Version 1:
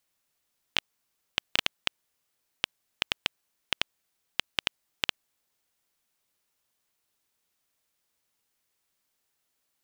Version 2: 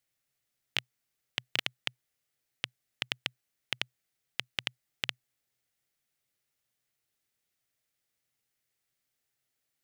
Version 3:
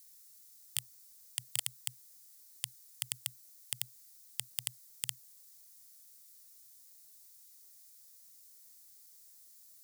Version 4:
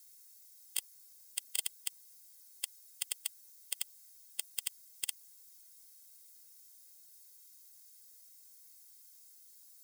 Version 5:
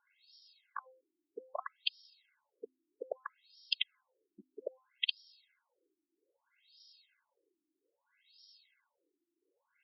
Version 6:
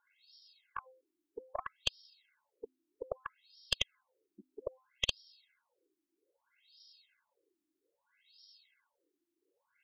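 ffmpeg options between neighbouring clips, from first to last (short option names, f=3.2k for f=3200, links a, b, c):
-af "equalizer=f=125:t=o:w=0.33:g=11,equalizer=f=1k:t=o:w=0.33:g=-8,equalizer=f=2k:t=o:w=0.33:g=4,volume=-5dB"
-af "alimiter=limit=-18dB:level=0:latency=1:release=32,volume=32.5dB,asoftclip=hard,volume=-32.5dB,aexciter=amount=4.5:drive=8.1:freq=4.1k,volume=5.5dB"
-af "afftfilt=real='re*eq(mod(floor(b*sr/1024/280),2),1)':imag='im*eq(mod(floor(b*sr/1024/280),2),1)':win_size=1024:overlap=0.75,volume=3dB"
-af "aeval=exprs='(tanh(17.8*val(0)+0.7)-tanh(0.7))/17.8':c=same,bandreject=f=258.9:t=h:w=4,bandreject=f=517.8:t=h:w=4,bandreject=f=776.7:t=h:w=4,bandreject=f=1.0356k:t=h:w=4,bandreject=f=1.2945k:t=h:w=4,afftfilt=real='re*between(b*sr/1024,250*pow(4100/250,0.5+0.5*sin(2*PI*0.62*pts/sr))/1.41,250*pow(4100/250,0.5+0.5*sin(2*PI*0.62*pts/sr))*1.41)':imag='im*between(b*sr/1024,250*pow(4100/250,0.5+0.5*sin(2*PI*0.62*pts/sr))/1.41,250*pow(4100/250,0.5+0.5*sin(2*PI*0.62*pts/sr))*1.41)':win_size=1024:overlap=0.75,volume=16.5dB"
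-af "aeval=exprs='(tanh(7.08*val(0)+0.65)-tanh(0.65))/7.08':c=same,volume=4dB"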